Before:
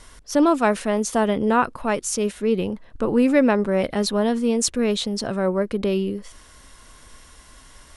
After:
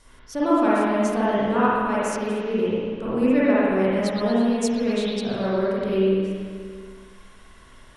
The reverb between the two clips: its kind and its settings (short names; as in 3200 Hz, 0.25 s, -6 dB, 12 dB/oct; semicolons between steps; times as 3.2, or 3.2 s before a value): spring tank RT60 2 s, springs 47/55 ms, chirp 70 ms, DRR -9 dB; gain -10 dB